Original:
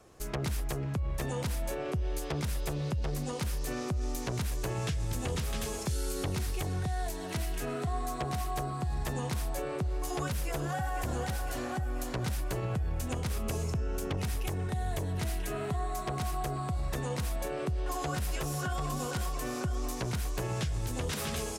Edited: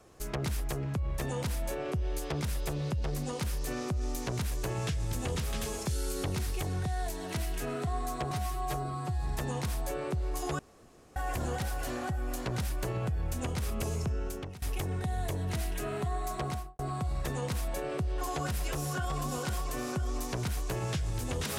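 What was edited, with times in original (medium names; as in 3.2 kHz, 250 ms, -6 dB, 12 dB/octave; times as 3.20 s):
8.31–8.95 s: stretch 1.5×
10.27–10.84 s: room tone
13.86–14.30 s: fade out, to -20.5 dB
16.14–16.47 s: studio fade out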